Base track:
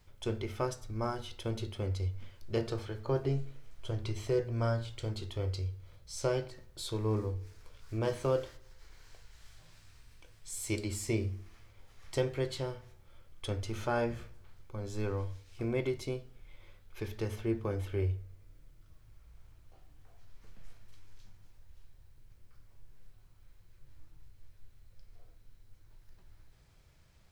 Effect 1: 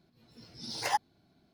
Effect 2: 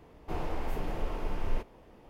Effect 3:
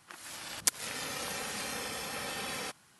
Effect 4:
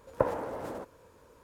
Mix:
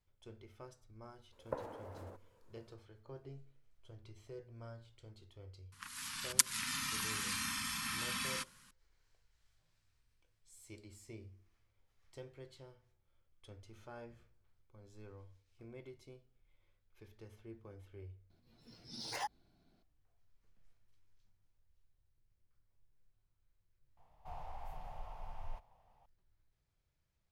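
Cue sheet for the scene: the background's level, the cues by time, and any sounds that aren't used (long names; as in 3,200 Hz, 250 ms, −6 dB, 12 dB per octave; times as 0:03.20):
base track −19.5 dB
0:01.32: mix in 4 −13.5 dB
0:05.72: mix in 3 + elliptic band-stop filter 260–1,000 Hz
0:18.30: mix in 1 −6 dB + brickwall limiter −23.5 dBFS
0:23.97: mix in 2 −14 dB + drawn EQ curve 130 Hz 0 dB, 350 Hz −23 dB, 770 Hz +9 dB, 1,500 Hz −4 dB, 3,200 Hz −2 dB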